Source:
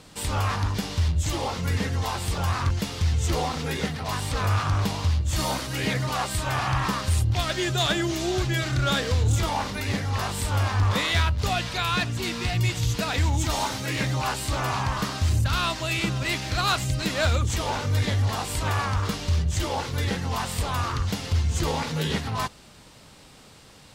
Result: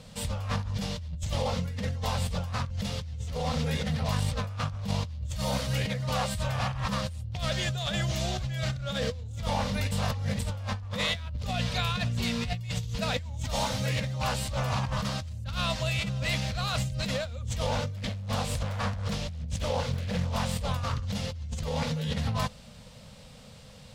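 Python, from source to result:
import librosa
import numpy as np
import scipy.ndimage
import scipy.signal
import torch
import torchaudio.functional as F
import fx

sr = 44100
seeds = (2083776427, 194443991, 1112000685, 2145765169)

y = fx.doppler_dist(x, sr, depth_ms=0.9, at=(17.96, 20.53))
y = fx.edit(y, sr, fx.reverse_span(start_s=9.91, length_s=0.48), tone=tone)
y = fx.curve_eq(y, sr, hz=(230.0, 340.0, 500.0, 810.0, 1500.0, 3400.0, 11000.0), db=(0, -25, 1, -8, -9, -5, -9))
y = fx.over_compress(y, sr, threshold_db=-31.0, ratio=-1.0)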